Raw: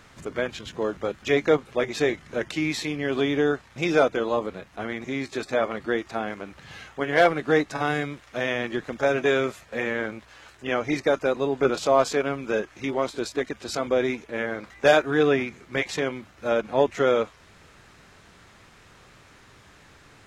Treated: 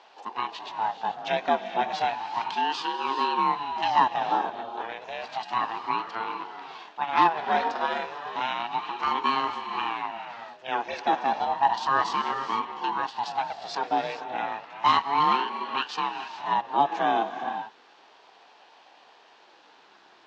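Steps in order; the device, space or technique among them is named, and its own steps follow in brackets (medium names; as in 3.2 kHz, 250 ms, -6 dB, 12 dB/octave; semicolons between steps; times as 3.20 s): gated-style reverb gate 470 ms rising, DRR 7.5 dB; voice changer toy (ring modulator with a swept carrier 450 Hz, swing 50%, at 0.32 Hz; cabinet simulation 480–4900 Hz, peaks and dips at 550 Hz -7 dB, 870 Hz +5 dB, 1.3 kHz -4 dB, 2.1 kHz -9 dB); trim +2.5 dB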